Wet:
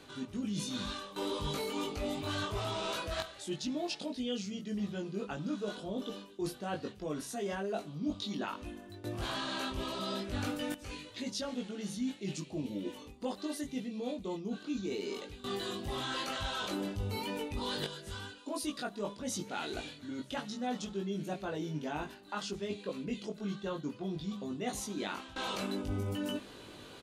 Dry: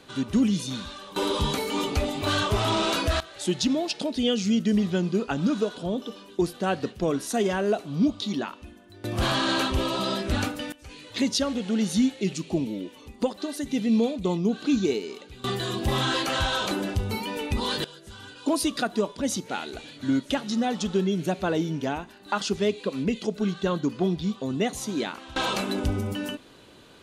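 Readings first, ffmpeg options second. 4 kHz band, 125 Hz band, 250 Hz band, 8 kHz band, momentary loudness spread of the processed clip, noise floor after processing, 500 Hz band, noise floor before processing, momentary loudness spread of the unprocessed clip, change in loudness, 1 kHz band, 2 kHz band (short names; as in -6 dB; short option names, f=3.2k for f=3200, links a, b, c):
-10.0 dB, -11.0 dB, -12.0 dB, -9.5 dB, 5 LU, -52 dBFS, -11.0 dB, -50 dBFS, 9 LU, -11.0 dB, -10.0 dB, -10.5 dB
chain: -filter_complex "[0:a]areverse,acompressor=threshold=-36dB:ratio=6,areverse,asplit=2[a][b];[b]adelay=20,volume=-2dB[c];[a][c]amix=inputs=2:normalize=0,bandreject=f=67.62:t=h:w=4,bandreject=f=135.24:t=h:w=4,bandreject=f=202.86:t=h:w=4,volume=-1dB"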